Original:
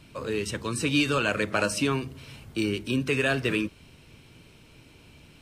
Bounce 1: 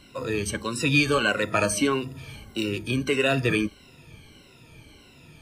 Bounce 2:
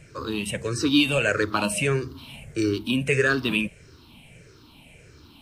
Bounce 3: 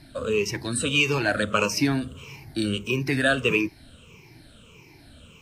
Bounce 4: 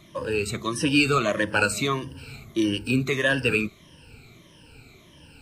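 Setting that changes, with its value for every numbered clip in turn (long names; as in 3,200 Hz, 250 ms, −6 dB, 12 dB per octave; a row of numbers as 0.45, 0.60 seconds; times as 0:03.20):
rippled gain that drifts along the octave scale, ripples per octave: 2.1, 0.52, 0.77, 1.2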